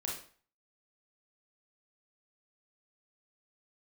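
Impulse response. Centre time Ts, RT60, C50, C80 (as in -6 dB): 38 ms, 0.45 s, 4.0 dB, 9.5 dB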